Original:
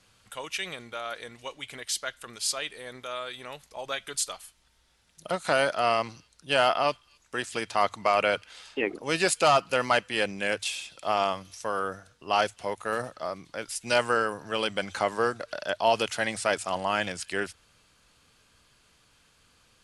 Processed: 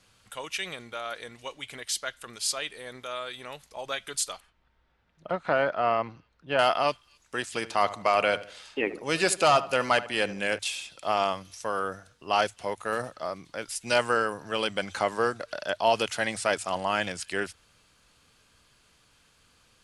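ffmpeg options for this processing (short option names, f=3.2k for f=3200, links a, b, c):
-filter_complex "[0:a]asettb=1/sr,asplit=3[a][b][c];[a]atrim=end=4.404[d];[b]atrim=start=4.4:end=6.59,asetpts=PTS-STARTPTS,afade=t=in:d=0.004:c=qsin,afade=t=out:st=2.186:d=0.004:c=qsin,lowpass=1.9k[e];[c]atrim=start=6.586[f];[d][e]acrossfade=d=0.004:c1=hsin:c2=qsin[g];[g][f]acrossfade=d=0.004:c1=qsin:c2=hsin,asettb=1/sr,asplit=3[h][i][j];[h]atrim=end=7.514[k];[i]atrim=start=7.51:end=10.59,asetpts=PTS-STARTPTS,afade=t=in:d=0.004:c=qsin,afade=t=out:st=3.076:d=0.004:c=qsin,asplit=2[l][m];[m]adelay=76,lowpass=f=2k:p=1,volume=-14.5dB,asplit=2[n][o];[o]adelay=76,lowpass=f=2k:p=1,volume=0.4,asplit=2[p][q];[q]adelay=76,lowpass=f=2k:p=1,volume=0.4,asplit=2[r][s];[s]adelay=76,lowpass=f=2k:p=1,volume=0.4[t];[l][n][p][r][t]amix=inputs=5:normalize=0,atrim=end_sample=135828[u];[j]atrim=start=10.586[v];[k][u]acrossfade=d=0.004:c1=hsin:c2=qsin[w];[w][v]acrossfade=d=0.004:c1=qsin:c2=hsin"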